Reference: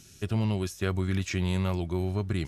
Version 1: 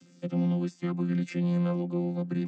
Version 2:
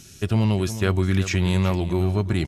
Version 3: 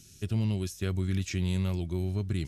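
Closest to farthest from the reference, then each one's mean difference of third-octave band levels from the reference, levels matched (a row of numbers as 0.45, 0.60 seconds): 2, 3, 1; 1.5, 2.5, 9.0 decibels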